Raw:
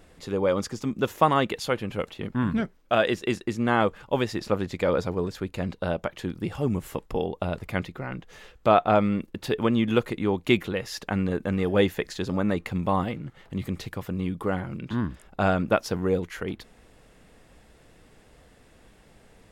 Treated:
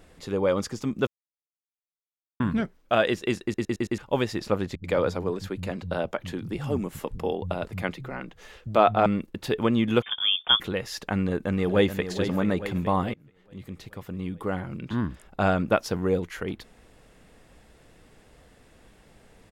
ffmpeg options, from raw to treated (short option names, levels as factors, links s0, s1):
-filter_complex "[0:a]asettb=1/sr,asplit=3[s0][s1][s2];[s0]atrim=end=4.754[s3];[s1]atrim=start=4.75:end=9.06,asetpts=PTS-STARTPTS,afade=t=in:d=0.004:c=qsin,afade=t=out:st=4.306:d=0.004:c=qsin,acrossover=split=170[s4][s5];[s5]adelay=90[s6];[s4][s6]amix=inputs=2:normalize=0,atrim=end_sample=190071[s7];[s2]atrim=start=9.056[s8];[s3][s7]acrossfade=d=0.004:c1=hsin:c2=qsin[s9];[s9][s8]acrossfade=d=0.004:c1=qsin:c2=hsin,asettb=1/sr,asplit=3[s10][s11][s12];[s10]atrim=end=10.024[s13];[s11]atrim=start=10.02:end=10.6,asetpts=PTS-STARTPTS,afade=t=in:d=0.004:c=qsin,afade=t=out:st=0.576:d=0.004:c=qsin,lowpass=f=3100:t=q:w=0.5098,lowpass=f=3100:t=q:w=0.6013,lowpass=f=3100:t=q:w=0.9,lowpass=f=3100:t=q:w=2.563,afreqshift=-3600[s14];[s12]atrim=start=10.596[s15];[s13][s14]acrossfade=d=0.004:c1=hsin:c2=qsin[s16];[s16][s15]acrossfade=d=0.004:c1=qsin:c2=hsin,asplit=2[s17][s18];[s18]afade=t=in:st=11.24:d=0.01,afade=t=out:st=12.05:d=0.01,aecho=0:1:430|860|1290|1720|2150|2580:0.354813|0.195147|0.107331|0.0590321|0.0324676|0.0178572[s19];[s17][s19]amix=inputs=2:normalize=0,asplit=9[s20][s21][s22][s23][s24][s25][s26][s27][s28];[s20]atrim=end=1.07,asetpts=PTS-STARTPTS,afade=t=out:st=1.066:d=0.004:c=hsin[s29];[s21]atrim=start=1.07:end=2.4,asetpts=PTS-STARTPTS,volume=0[s30];[s22]atrim=start=2.4:end=3.542,asetpts=PTS-STARTPTS,afade=t=in:d=0.004:c=hsin[s31];[s23]atrim=start=3.428:end=3.542[s32];[s24]atrim=start=3.428:end=3.542[s33];[s25]atrim=start=3.428:end=3.542[s34];[s26]atrim=start=3.428:end=3.542[s35];[s27]atrim=start=3.978:end=13.14,asetpts=PTS-STARTPTS,afade=t=out:st=9.158:d=0.004:c=hsin:silence=0.0707946[s36];[s28]atrim=start=13.14,asetpts=PTS-STARTPTS,afade=t=in:d=1.77:silence=0.0707946[s37];[s29][s30][s31]concat=n=3:v=0:a=1[s38];[s38][s32]acrossfade=d=0.004:c1=hsin:c2=hsin[s39];[s39][s33]acrossfade=d=0.004:c1=hsin:c2=hsin[s40];[s40][s34]acrossfade=d=0.004:c1=hsin:c2=hsin[s41];[s41][s35]acrossfade=d=0.004:c1=hsin:c2=hsin[s42];[s36][s37]concat=n=2:v=0:a=1[s43];[s42][s43]acrossfade=d=0.004:c1=hsin:c2=hsin"